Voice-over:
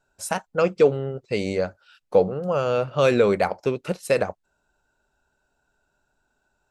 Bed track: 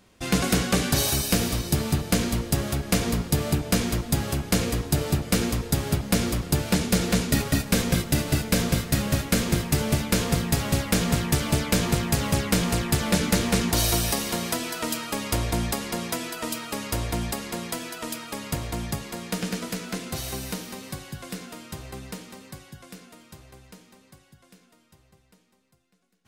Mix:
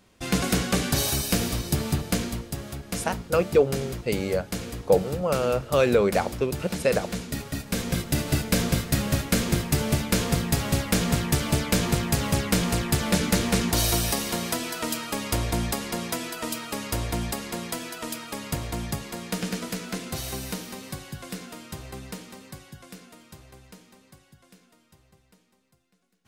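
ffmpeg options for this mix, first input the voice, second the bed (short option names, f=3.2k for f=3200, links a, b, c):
-filter_complex "[0:a]adelay=2750,volume=-2dB[a];[1:a]volume=7dB,afade=t=out:st=2.01:d=0.51:silence=0.421697,afade=t=in:st=7.52:d=0.84:silence=0.375837[b];[a][b]amix=inputs=2:normalize=0"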